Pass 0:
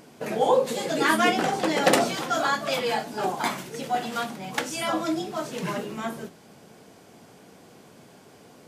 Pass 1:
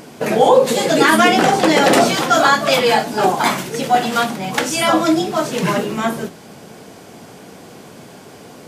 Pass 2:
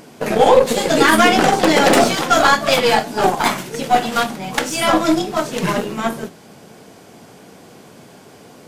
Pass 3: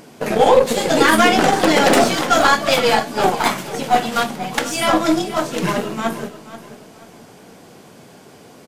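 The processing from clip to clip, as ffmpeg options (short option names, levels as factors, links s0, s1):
-af "alimiter=level_in=4.47:limit=0.891:release=50:level=0:latency=1,volume=0.891"
-af "aeval=exprs='0.794*(cos(1*acos(clip(val(0)/0.794,-1,1)))-cos(1*PI/2))+0.0562*(cos(4*acos(clip(val(0)/0.794,-1,1)))-cos(4*PI/2))+0.0398*(cos(7*acos(clip(val(0)/0.794,-1,1)))-cos(7*PI/2))':c=same"
-af "aecho=1:1:482|964|1446:0.178|0.0622|0.0218,volume=0.891"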